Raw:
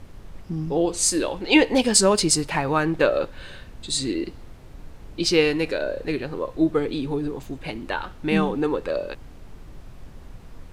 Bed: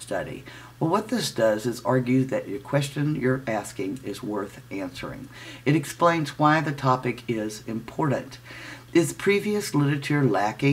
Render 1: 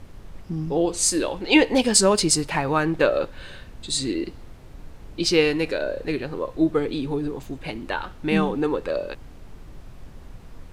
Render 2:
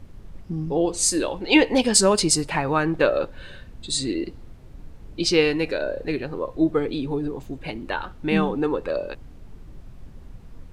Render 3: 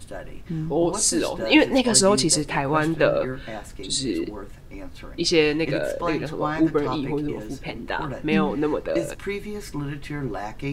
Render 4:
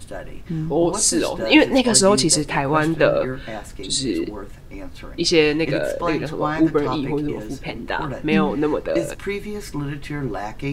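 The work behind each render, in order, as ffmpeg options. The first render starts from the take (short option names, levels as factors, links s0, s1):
-af anull
-af "afftdn=nr=6:nf=-44"
-filter_complex "[1:a]volume=0.398[s0];[0:a][s0]amix=inputs=2:normalize=0"
-af "volume=1.41,alimiter=limit=0.891:level=0:latency=1"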